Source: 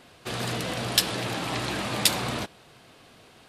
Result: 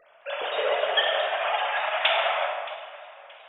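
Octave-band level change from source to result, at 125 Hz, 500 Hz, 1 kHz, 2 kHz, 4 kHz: under -35 dB, +8.0 dB, +7.5 dB, +6.0 dB, +0.5 dB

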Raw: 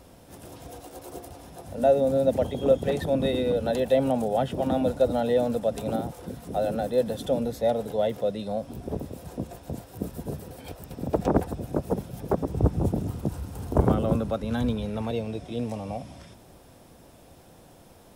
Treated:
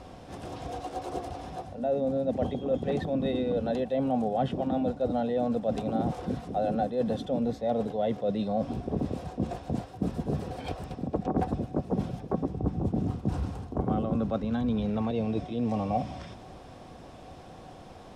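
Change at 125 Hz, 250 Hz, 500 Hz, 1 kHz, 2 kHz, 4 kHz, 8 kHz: -2.5 dB, 0.0 dB, -5.0 dB, -0.5 dB, -4.5 dB, -5.0 dB, n/a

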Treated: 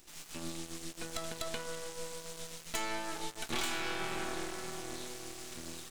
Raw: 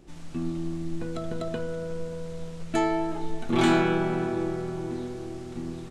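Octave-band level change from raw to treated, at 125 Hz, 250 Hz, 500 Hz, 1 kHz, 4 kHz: -17.5, -17.5, -14.0, -10.0, -0.5 dB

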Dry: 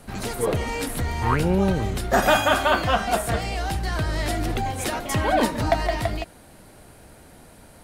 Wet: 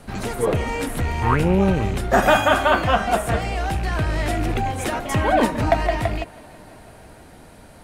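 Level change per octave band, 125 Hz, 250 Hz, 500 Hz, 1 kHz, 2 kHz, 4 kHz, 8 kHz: +3.0, +3.0, +3.0, +3.0, +2.5, -0.5, -2.0 dB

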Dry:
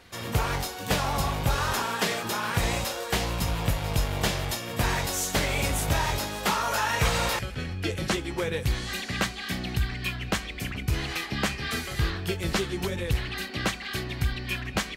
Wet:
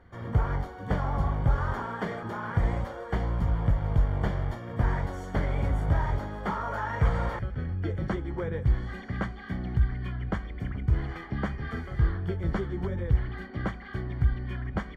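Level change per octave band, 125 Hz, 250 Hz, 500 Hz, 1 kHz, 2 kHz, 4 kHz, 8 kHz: +2.5 dB, -1.0 dB, -4.0 dB, -5.0 dB, -8.5 dB, -20.5 dB, under -25 dB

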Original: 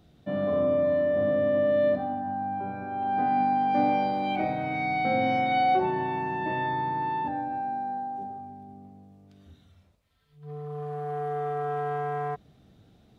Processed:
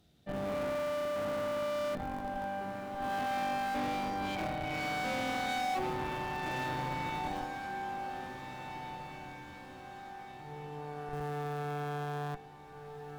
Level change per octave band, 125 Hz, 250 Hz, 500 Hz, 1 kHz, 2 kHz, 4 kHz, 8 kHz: -4.5 dB, -8.5 dB, -10.0 dB, -9.0 dB, -4.0 dB, +1.0 dB, n/a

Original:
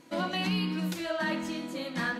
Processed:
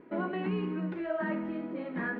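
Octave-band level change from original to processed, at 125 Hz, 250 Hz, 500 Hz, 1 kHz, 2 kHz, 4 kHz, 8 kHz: -3.0 dB, -1.0 dB, +1.0 dB, -4.0 dB, -4.5 dB, -18.5 dB, under -35 dB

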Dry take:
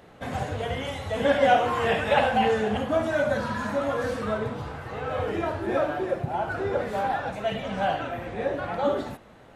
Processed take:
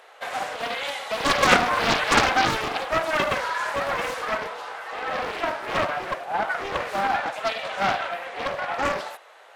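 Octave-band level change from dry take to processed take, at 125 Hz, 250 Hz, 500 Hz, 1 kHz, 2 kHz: -5.0, -3.0, -3.0, +3.0, +6.0 dB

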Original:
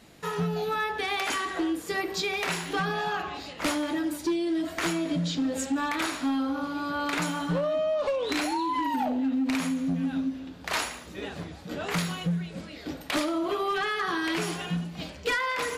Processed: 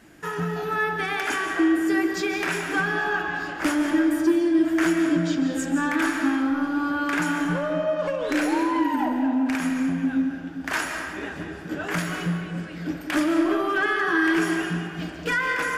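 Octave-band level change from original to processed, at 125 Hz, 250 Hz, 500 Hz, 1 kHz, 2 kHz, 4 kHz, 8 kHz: +1.5, +6.5, +3.0, +2.5, +7.0, -2.0, +0.5 dB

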